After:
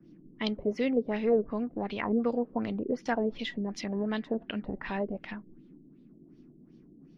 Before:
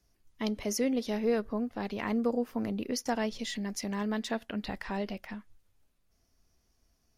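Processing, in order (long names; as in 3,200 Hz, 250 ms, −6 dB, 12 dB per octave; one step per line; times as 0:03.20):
auto-filter low-pass sine 2.7 Hz 380–3,700 Hz
noise in a band 140–340 Hz −55 dBFS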